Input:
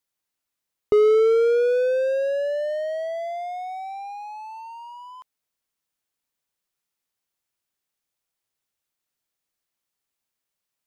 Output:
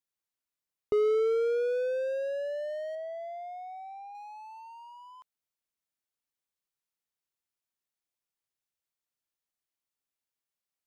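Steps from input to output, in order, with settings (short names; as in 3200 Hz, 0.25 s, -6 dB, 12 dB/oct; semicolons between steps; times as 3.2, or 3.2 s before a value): 2.95–4.15 high shelf 2800 Hz -11.5 dB; gain -9 dB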